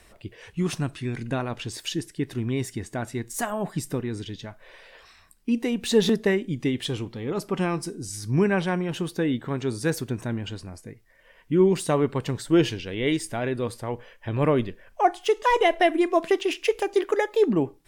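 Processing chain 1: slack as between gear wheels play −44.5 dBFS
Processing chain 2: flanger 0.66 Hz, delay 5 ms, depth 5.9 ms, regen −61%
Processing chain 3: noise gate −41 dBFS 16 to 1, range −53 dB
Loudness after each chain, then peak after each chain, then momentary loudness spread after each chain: −25.5, −30.0, −25.5 LKFS; −8.0, −10.5, −8.0 dBFS; 13, 13, 13 LU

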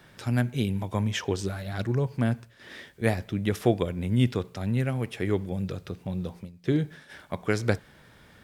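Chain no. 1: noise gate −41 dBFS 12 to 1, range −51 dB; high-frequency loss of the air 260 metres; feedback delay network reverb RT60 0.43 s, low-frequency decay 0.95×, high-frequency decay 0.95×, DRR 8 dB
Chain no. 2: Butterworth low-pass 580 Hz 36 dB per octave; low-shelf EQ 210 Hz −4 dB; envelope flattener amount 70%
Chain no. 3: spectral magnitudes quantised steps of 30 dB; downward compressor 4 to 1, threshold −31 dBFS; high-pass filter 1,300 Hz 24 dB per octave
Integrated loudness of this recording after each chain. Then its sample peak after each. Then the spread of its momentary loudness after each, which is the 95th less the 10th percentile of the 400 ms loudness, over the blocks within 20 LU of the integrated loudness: −29.0, −25.5, −47.0 LKFS; −8.5, −9.5, −23.5 dBFS; 9, 5, 13 LU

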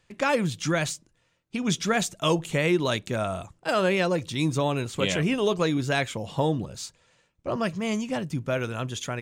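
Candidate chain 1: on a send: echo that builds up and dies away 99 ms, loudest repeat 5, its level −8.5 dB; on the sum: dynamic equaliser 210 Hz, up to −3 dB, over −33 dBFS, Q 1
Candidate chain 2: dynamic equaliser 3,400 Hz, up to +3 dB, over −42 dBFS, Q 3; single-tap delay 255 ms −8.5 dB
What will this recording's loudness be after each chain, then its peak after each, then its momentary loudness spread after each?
−24.5, −26.0 LKFS; −8.5, −8.0 dBFS; 6, 9 LU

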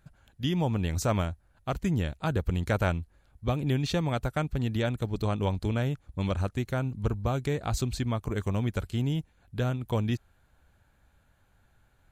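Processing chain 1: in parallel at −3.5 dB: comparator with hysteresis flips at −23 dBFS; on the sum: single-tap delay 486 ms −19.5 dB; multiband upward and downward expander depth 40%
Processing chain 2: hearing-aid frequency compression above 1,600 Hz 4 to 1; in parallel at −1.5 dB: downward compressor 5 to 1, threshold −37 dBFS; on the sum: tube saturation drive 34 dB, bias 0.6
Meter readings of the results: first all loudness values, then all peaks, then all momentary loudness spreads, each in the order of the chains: −29.5, −38.0 LKFS; −6.5, −30.0 dBFS; 7, 5 LU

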